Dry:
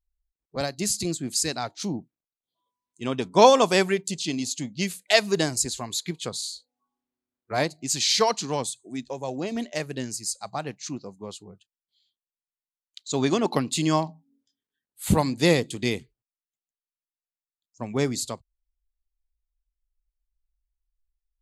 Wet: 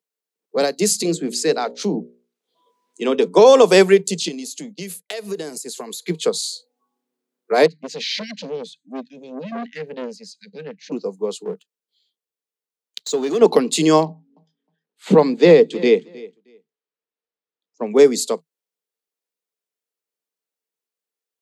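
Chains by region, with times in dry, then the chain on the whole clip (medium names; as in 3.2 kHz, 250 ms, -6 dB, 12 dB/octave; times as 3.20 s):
1.02–3.26 s: treble shelf 7.8 kHz -10.5 dB + hum notches 60/120/180/240/300/360/420/480/540/600 Hz + three bands compressed up and down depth 40%
4.28–6.07 s: expander -37 dBFS + peaking EQ 11 kHz +10 dB 0.41 oct + compression 16:1, threshold -34 dBFS
7.66–10.92 s: brick-wall FIR band-stop 290–1500 Hz + distance through air 270 m + transformer saturation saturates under 1.3 kHz
11.45–13.41 s: waveshaping leveller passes 2 + compression 10:1, threshold -30 dBFS
14.05–17.91 s: distance through air 170 m + feedback delay 313 ms, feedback 18%, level -21.5 dB
whole clip: steep high-pass 160 Hz 96 dB/octave; peaking EQ 450 Hz +14.5 dB 0.37 oct; loudness maximiser +7.5 dB; trim -1 dB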